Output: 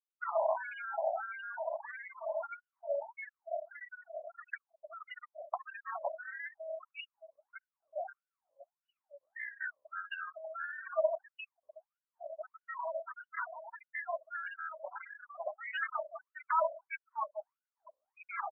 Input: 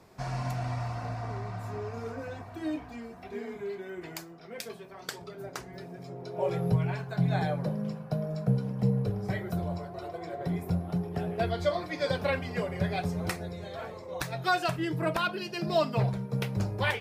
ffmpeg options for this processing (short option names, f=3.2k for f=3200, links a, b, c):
-filter_complex "[0:a]asubboost=boost=8.5:cutoff=190,asetrate=40517,aresample=44100,asplit=2[a][b];[b]aecho=0:1:466|932:0.075|0.0262[c];[a][c]amix=inputs=2:normalize=0,acrusher=samples=17:mix=1:aa=0.000001:lfo=1:lforange=27.2:lforate=0.22,agate=range=-33dB:threshold=-36dB:ratio=3:detection=peak,areverse,acompressor=threshold=-32dB:ratio=5,areverse,equalizer=f=620:w=5.2:g=9.5,afftfilt=real='re*gte(hypot(re,im),0.0112)':imag='im*gte(hypot(re,im),0.0112)':win_size=1024:overlap=0.75,acontrast=79,aeval=exprs='val(0)+0.01*(sin(2*PI*50*n/s)+sin(2*PI*2*50*n/s)/2+sin(2*PI*3*50*n/s)/3+sin(2*PI*4*50*n/s)/4+sin(2*PI*5*50*n/s)/5)':c=same,afftfilt=real='re*between(b*sr/1024,730*pow(2100/730,0.5+0.5*sin(2*PI*1.6*pts/sr))/1.41,730*pow(2100/730,0.5+0.5*sin(2*PI*1.6*pts/sr))*1.41)':imag='im*between(b*sr/1024,730*pow(2100/730,0.5+0.5*sin(2*PI*1.6*pts/sr))/1.41,730*pow(2100/730,0.5+0.5*sin(2*PI*1.6*pts/sr))*1.41)':win_size=1024:overlap=0.75,volume=5.5dB"